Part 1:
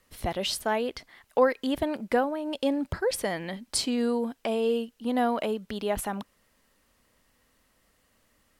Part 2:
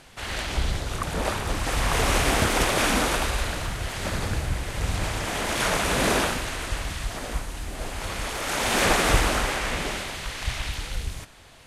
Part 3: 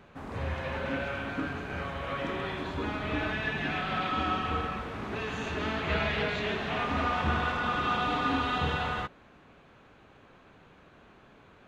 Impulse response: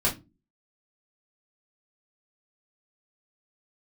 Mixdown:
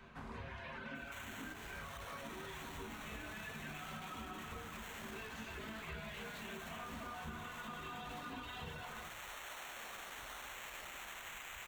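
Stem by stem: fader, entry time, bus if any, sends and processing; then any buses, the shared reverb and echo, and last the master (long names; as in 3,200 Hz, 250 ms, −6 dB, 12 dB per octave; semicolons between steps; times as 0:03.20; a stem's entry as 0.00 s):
muted
0.0 dB, 0.95 s, bus A, no send, echo send −19.5 dB, downward compressor, threshold −32 dBFS, peak gain reduction 16.5 dB; sample-rate reduction 4,900 Hz, jitter 0%
−2.5 dB, 0.00 s, bus A, send −15 dB, no echo send, reverb reduction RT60 1.5 s
bus A: 0.0 dB, high-pass filter 820 Hz 12 dB per octave; brickwall limiter −31 dBFS, peak gain reduction 11 dB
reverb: on, pre-delay 3 ms
echo: single-tap delay 139 ms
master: downward compressor 4 to 1, threshold −46 dBFS, peak gain reduction 14.5 dB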